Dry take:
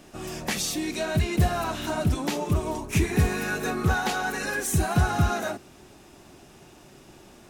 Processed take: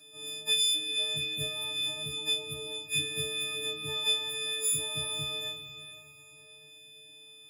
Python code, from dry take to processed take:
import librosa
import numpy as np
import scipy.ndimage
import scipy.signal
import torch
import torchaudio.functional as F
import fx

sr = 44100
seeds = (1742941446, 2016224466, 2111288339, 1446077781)

y = fx.freq_snap(x, sr, grid_st=6)
y = scipy.signal.sosfilt(scipy.signal.butter(2, 51.0, 'highpass', fs=sr, output='sos'), y)
y = fx.tilt_shelf(y, sr, db=-4.0, hz=1400.0)
y = fx.stiff_resonator(y, sr, f0_hz=140.0, decay_s=0.39, stiffness=0.008)
y = fx.echo_diffused(y, sr, ms=469, feedback_pct=41, wet_db=-11.5)
y = fx.end_taper(y, sr, db_per_s=170.0)